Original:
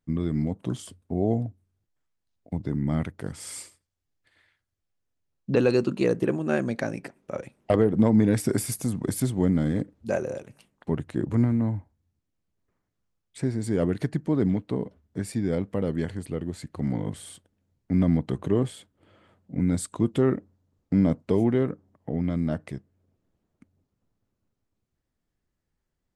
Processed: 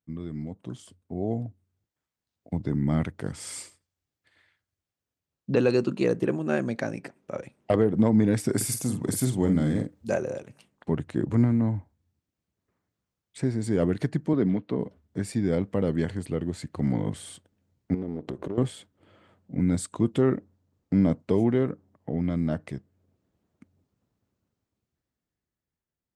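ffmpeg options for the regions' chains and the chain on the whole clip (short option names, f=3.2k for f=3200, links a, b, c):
-filter_complex "[0:a]asettb=1/sr,asplit=3[a][b][c];[a]atrim=end=8.564[d];[b]atrim=start=8.56:end=10.14,asetpts=PTS-STARTPTS,afade=t=in:d=0.004:c=qsin,afade=t=out:st=1.576:d=0.004:c=qsin,highshelf=f=6.2k:g=8.5,asplit=2[e][f];[f]adelay=47,volume=-7.5dB[g];[e][g]amix=inputs=2:normalize=0,atrim=end_sample=69678[h];[c]atrim=start=10.136[i];[d][h]acrossfade=d=0.004:c1=hsin:c2=qsin[j];[j][i]acrossfade=d=0.004:c1=qsin:c2=hsin,asettb=1/sr,asplit=3[k][l][m];[k]atrim=end=14.334[n];[l]atrim=start=14.33:end=14.79,asetpts=PTS-STARTPTS,afade=t=in:d=0.004:c=qsin,afade=t=out:st=0.456:d=0.004:c=qsin,highpass=140,lowpass=4.5k,bandreject=f=810:w=12[o];[m]atrim=start=14.786[p];[n][o]acrossfade=d=0.004:c1=hsin:c2=qsin[q];[q][p]acrossfade=d=0.004:c1=qsin:c2=hsin,asettb=1/sr,asplit=3[r][s][t];[r]atrim=end=17.944[u];[s]atrim=start=17.94:end=18.58,asetpts=PTS-STARTPTS,afade=t=in:d=0.004:c=qsin,afade=t=out:st=0.636:d=0.004:c=qsin,aeval=exprs='if(lt(val(0),0),0.251*val(0),val(0))':c=same,equalizer=f=370:w=0.78:g=12.5,acompressor=threshold=-30dB:ratio=8:attack=3.2:release=140:knee=1:detection=peak[v];[t]atrim=start=18.576[w];[u][v]acrossfade=d=0.004:c1=hsin:c2=qsin[x];[x][w]acrossfade=d=0.004:c1=qsin:c2=hsin,dynaudnorm=f=150:g=21:m=12dB,highpass=61,equalizer=f=11k:w=2.9:g=-6.5,volume=-8.5dB"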